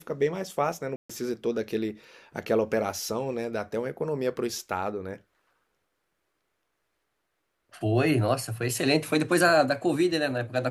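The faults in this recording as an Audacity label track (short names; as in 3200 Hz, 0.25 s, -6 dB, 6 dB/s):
0.960000	1.090000	gap 0.135 s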